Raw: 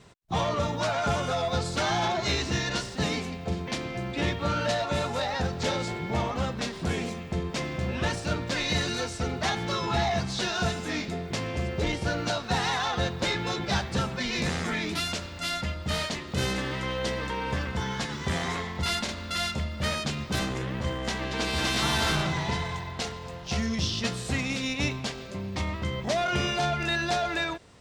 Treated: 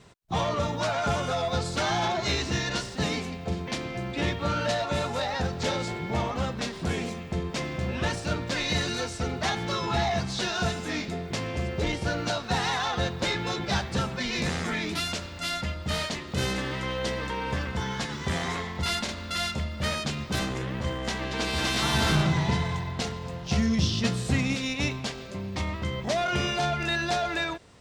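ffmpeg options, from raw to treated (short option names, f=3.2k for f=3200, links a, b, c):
-filter_complex "[0:a]asettb=1/sr,asplit=3[a][b][c];[a]atrim=end=21.944[d];[b]atrim=start=21.94:end=24.55,asetpts=PTS-STARTPTS,afade=t=in:d=0.004:c=qsin,afade=t=out:st=2.606:d=0.004:c=qsin,equalizer=f=150:t=o:w=2.2:g=6.5[e];[c]atrim=start=24.546[f];[d][e]acrossfade=d=0.004:c1=hsin:c2=qsin[g];[g][f]acrossfade=d=0.004:c1=qsin:c2=hsin"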